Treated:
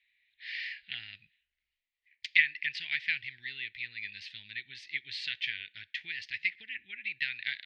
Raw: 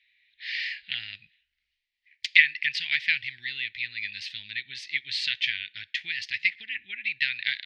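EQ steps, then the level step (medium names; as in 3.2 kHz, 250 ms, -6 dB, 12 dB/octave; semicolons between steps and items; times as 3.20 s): dynamic bell 430 Hz, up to +5 dB, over -54 dBFS, Q 1.6; treble shelf 4.4 kHz -10.5 dB; -4.5 dB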